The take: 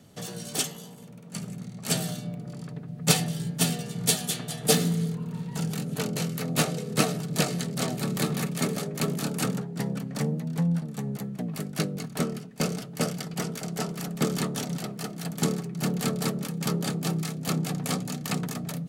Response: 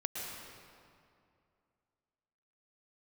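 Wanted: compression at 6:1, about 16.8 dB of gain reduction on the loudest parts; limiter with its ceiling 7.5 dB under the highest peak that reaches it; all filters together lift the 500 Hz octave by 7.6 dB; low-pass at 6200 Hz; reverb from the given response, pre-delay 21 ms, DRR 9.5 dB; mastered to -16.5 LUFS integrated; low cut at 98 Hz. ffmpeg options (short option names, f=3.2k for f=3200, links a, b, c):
-filter_complex "[0:a]highpass=98,lowpass=6.2k,equalizer=f=500:t=o:g=9,acompressor=threshold=-30dB:ratio=6,alimiter=level_in=0.5dB:limit=-24dB:level=0:latency=1,volume=-0.5dB,asplit=2[a][b];[1:a]atrim=start_sample=2205,adelay=21[c];[b][c]afir=irnorm=-1:irlink=0,volume=-12dB[d];[a][d]amix=inputs=2:normalize=0,volume=19dB"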